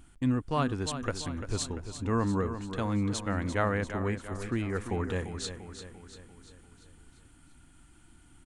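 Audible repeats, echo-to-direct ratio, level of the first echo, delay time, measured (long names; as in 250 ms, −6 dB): 5, −8.5 dB, −10.0 dB, 344 ms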